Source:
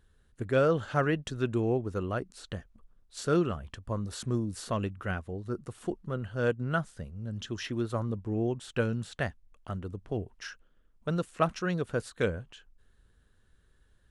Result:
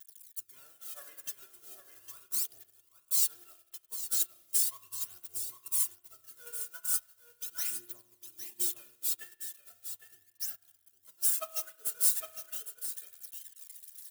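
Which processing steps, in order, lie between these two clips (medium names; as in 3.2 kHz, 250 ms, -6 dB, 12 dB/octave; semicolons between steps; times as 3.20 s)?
zero-crossing glitches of -27.5 dBFS; high-pass 53 Hz; pre-emphasis filter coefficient 0.97; comb 2.9 ms, depth 75%; phaser 0.38 Hz, delay 2.3 ms, feedback 72%; on a send: delay 808 ms -4 dB; on the sum: spring tank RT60 1.6 s, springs 31 ms, chirp 65 ms, DRR 3 dB; upward expansion 2.5:1, over -42 dBFS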